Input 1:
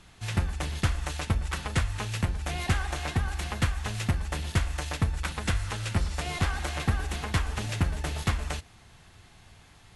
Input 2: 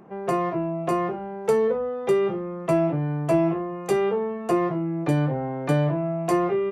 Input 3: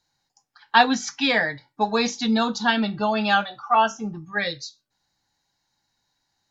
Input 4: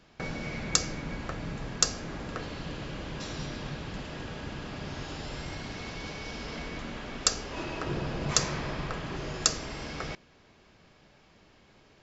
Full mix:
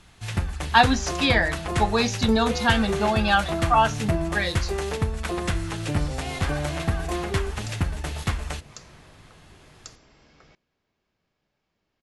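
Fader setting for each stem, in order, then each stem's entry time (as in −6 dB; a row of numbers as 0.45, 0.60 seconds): +1.0, −8.0, −0.5, −18.5 decibels; 0.00, 0.80, 0.00, 0.40 seconds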